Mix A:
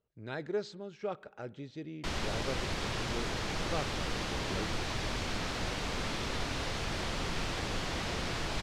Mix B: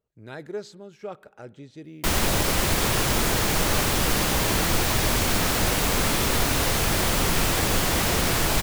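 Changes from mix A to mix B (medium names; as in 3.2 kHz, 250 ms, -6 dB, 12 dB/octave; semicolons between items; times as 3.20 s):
background +11.0 dB; master: remove Chebyshev low-pass 4.6 kHz, order 2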